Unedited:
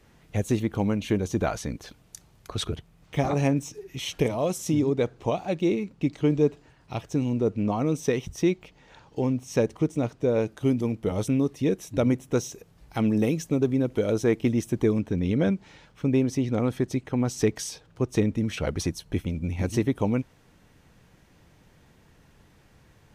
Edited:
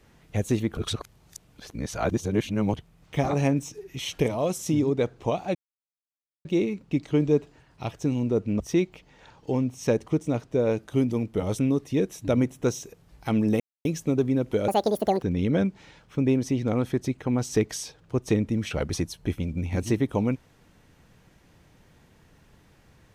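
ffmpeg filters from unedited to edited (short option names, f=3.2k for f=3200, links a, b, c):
-filter_complex "[0:a]asplit=8[a][b][c][d][e][f][g][h];[a]atrim=end=0.772[i];[b]atrim=start=0.768:end=2.742,asetpts=PTS-STARTPTS,areverse[j];[c]atrim=start=2.738:end=5.55,asetpts=PTS-STARTPTS,afade=t=out:st=2.808:d=0.004:c=hsin,apad=pad_dur=0.9[k];[d]atrim=start=5.55:end=7.702,asetpts=PTS-STARTPTS,afade=t=in:d=0.004:c=hsin[l];[e]atrim=start=8.288:end=13.29,asetpts=PTS-STARTPTS,afade=t=out:st=4.998:d=0.004:c=hsin,apad=pad_dur=0.25[m];[f]atrim=start=13.29:end=14.124,asetpts=PTS-STARTPTS,afade=t=in:d=0.004:c=hsin[n];[g]atrim=start=14.12:end=15.09,asetpts=PTS-STARTPTS,asetrate=78498,aresample=44100,atrim=end_sample=24032,asetpts=PTS-STARTPTS[o];[h]atrim=start=15.086[p];[i][j]acrossfade=d=0.004:c1=hsin:c2=hsin[q];[k][l]concat=n=2:v=0:a=1[r];[q][r]acrossfade=d=0.004:c1=hsin:c2=hsin[s];[m][n]concat=n=2:v=0:a=1[t];[s][t]acrossfade=d=0.004:c1=hsin:c2=hsin[u];[u][o]acrossfade=d=0.004:c1=hsin:c2=hsin[v];[v][p]acrossfade=d=0.004:c1=hsin:c2=hsin"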